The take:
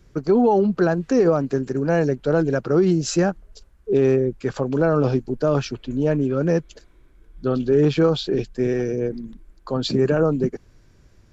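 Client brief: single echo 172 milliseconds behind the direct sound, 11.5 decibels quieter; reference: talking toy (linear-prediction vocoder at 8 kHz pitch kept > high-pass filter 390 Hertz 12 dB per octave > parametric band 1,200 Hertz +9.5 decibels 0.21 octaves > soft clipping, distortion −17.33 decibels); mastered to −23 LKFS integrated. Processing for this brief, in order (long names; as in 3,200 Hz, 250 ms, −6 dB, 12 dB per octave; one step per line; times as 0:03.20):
single-tap delay 172 ms −11.5 dB
linear-prediction vocoder at 8 kHz pitch kept
high-pass filter 390 Hz 12 dB per octave
parametric band 1,200 Hz +9.5 dB 0.21 octaves
soft clipping −15.5 dBFS
level +3 dB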